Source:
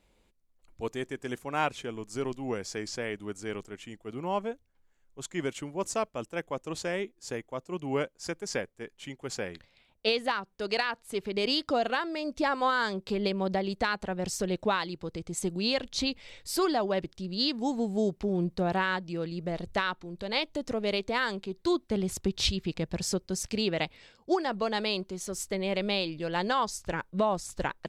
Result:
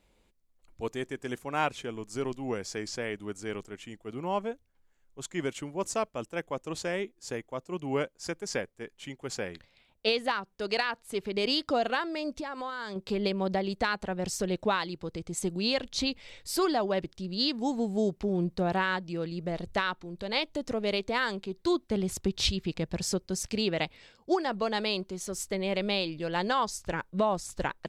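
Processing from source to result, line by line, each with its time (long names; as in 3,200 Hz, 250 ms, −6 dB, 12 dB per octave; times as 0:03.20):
0:12.36–0:12.96: downward compressor, threshold −33 dBFS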